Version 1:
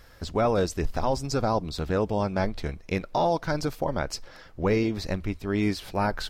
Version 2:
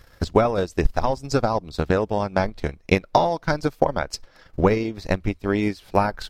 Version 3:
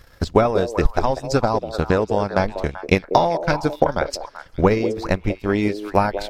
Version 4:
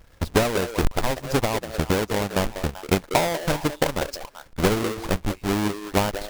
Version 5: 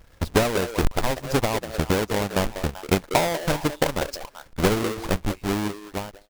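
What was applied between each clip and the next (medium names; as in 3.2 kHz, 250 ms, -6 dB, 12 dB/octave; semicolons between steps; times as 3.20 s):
transient shaper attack +12 dB, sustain -8 dB
repeats whose band climbs or falls 193 ms, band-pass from 450 Hz, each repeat 1.4 oct, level -6 dB; trim +2 dB
square wave that keeps the level; trim -8.5 dB
fade out at the end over 0.90 s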